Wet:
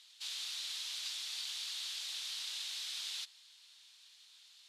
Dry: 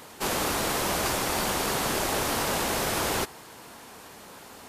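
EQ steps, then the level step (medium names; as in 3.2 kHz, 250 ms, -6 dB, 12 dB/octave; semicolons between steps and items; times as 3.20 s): ladder band-pass 4.2 kHz, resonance 55%; +1.0 dB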